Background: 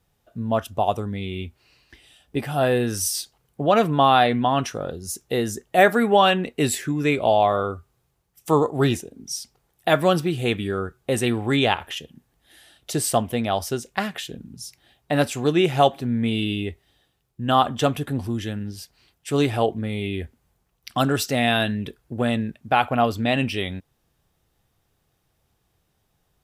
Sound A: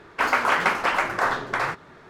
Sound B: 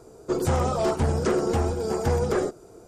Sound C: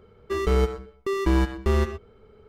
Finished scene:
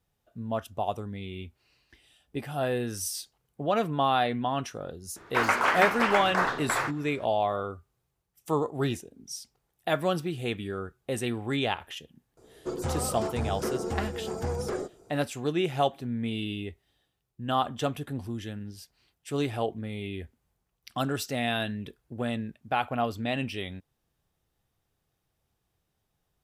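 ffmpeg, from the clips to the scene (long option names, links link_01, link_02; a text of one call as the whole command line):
ffmpeg -i bed.wav -i cue0.wav -i cue1.wav -filter_complex "[0:a]volume=-8.5dB[link_01];[1:a]atrim=end=2.09,asetpts=PTS-STARTPTS,volume=-3.5dB,afade=type=in:duration=0.004:curve=hsin,afade=type=out:start_time=2.086:duration=0.004:curve=hsin,adelay=5160[link_02];[2:a]atrim=end=2.87,asetpts=PTS-STARTPTS,volume=-8dB,afade=type=in:duration=0.004:curve=hsin,afade=type=out:start_time=2.866:duration=0.004:curve=hsin,adelay=12370[link_03];[link_01][link_02][link_03]amix=inputs=3:normalize=0" out.wav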